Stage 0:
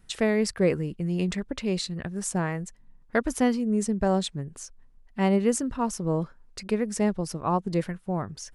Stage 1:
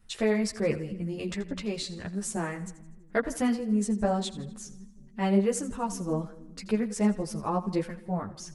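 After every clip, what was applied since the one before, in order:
echo with a time of its own for lows and highs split 310 Hz, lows 312 ms, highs 82 ms, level −16 dB
string-ensemble chorus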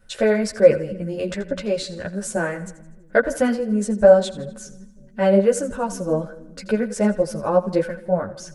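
hollow resonant body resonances 560/1,500 Hz, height 17 dB, ringing for 45 ms
level +4 dB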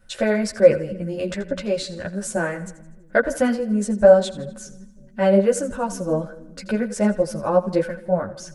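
notch filter 440 Hz, Q 12

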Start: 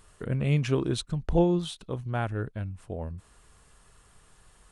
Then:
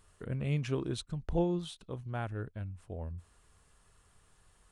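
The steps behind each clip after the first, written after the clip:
parametric band 86 Hz +5.5 dB 0.28 octaves
level −7.5 dB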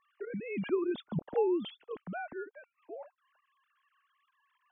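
three sine waves on the formant tracks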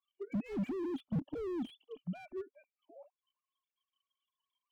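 formant resonators in series i
noise reduction from a noise print of the clip's start 20 dB
slew-rate limiting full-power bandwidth 1 Hz
level +15 dB

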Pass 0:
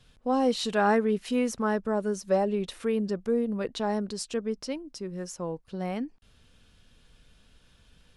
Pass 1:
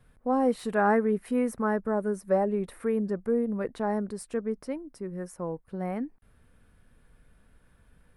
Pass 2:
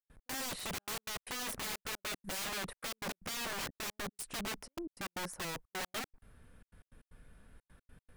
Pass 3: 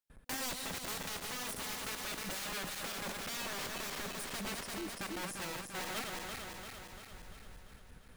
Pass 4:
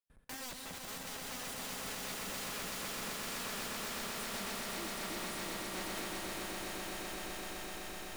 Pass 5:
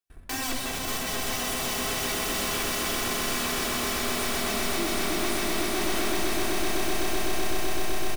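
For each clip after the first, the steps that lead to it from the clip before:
de-essing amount 55%; flat-topped bell 4,400 Hz −15 dB
soft clipping −21 dBFS, distortion −14 dB; gate pattern ".x.xxxxx.x" 154 BPM −60 dB; wrap-around overflow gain 35 dB; level +1 dB
feedback delay that plays each chunk backwards 172 ms, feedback 77%, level −6 dB; brickwall limiter −35 dBFS, peak gain reduction 7.5 dB; level +2.5 dB
echo that builds up and dies away 127 ms, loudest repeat 8, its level −6.5 dB; level −6 dB
comb filter 3 ms, depth 30%; leveller curve on the samples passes 2; rectangular room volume 3,800 cubic metres, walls furnished, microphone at 3.5 metres; level +4 dB

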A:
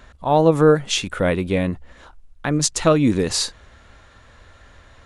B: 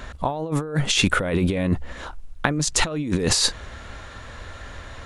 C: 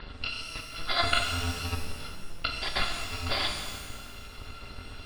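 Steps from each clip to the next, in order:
compressor whose output falls as the input rises −26 dBFS, ratio −1; level +3 dB
samples in bit-reversed order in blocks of 256 samples; Chebyshev low-pass with heavy ripple 4,800 Hz, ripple 3 dB; reverb with rising layers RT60 1.5 s, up +12 semitones, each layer −8 dB, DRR 2.5 dB; level −1.5 dB

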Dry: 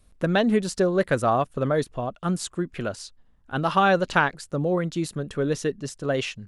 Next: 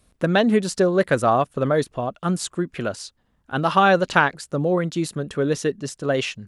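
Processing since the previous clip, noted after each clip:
high-pass filter 94 Hz 6 dB per octave
level +3.5 dB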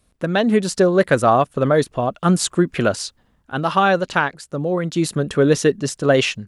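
automatic gain control gain up to 12 dB
level −2 dB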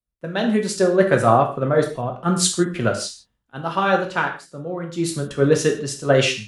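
reverb whose tail is shaped and stops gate 190 ms falling, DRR 2 dB
multiband upward and downward expander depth 70%
level −4 dB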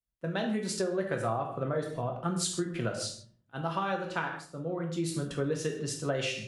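rectangular room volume 510 cubic metres, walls furnished, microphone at 0.69 metres
downward compressor 6 to 1, threshold −22 dBFS, peak gain reduction 13 dB
level −6 dB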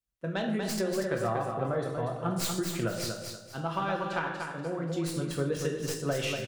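stylus tracing distortion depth 0.093 ms
on a send: repeating echo 239 ms, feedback 32%, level −5.5 dB

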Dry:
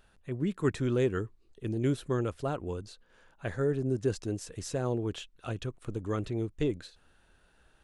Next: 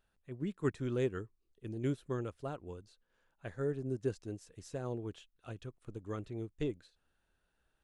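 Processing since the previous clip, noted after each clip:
expander for the loud parts 1.5 to 1, over −43 dBFS
level −4.5 dB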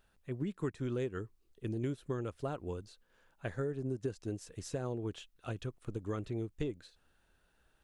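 downward compressor 6 to 1, threshold −40 dBFS, peak gain reduction 13 dB
level +7 dB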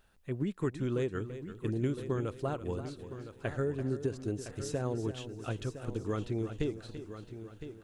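echo machine with several playback heads 337 ms, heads first and third, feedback 41%, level −12 dB
level +3.5 dB

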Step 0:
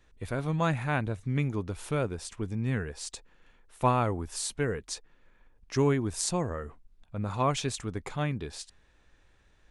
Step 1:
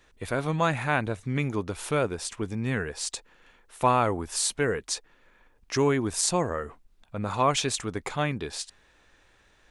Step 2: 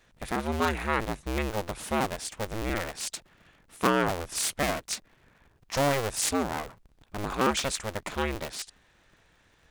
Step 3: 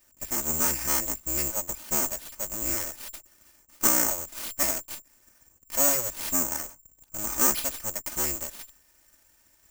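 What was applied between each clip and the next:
in parallel at +2 dB: brickwall limiter −20.5 dBFS, peak gain reduction 8 dB; on the sum: low-shelf EQ 220 Hz −10 dB
sub-harmonics by changed cycles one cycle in 2, inverted; level −2 dB
lower of the sound and its delayed copy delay 3.3 ms; bad sample-rate conversion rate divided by 6×, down filtered, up zero stuff; level −4.5 dB

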